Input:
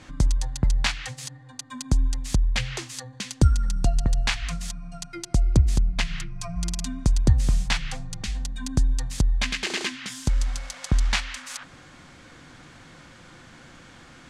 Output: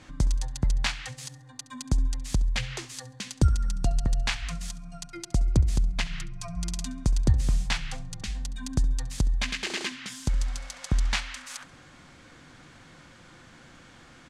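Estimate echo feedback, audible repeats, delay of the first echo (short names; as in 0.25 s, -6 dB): 32%, 2, 68 ms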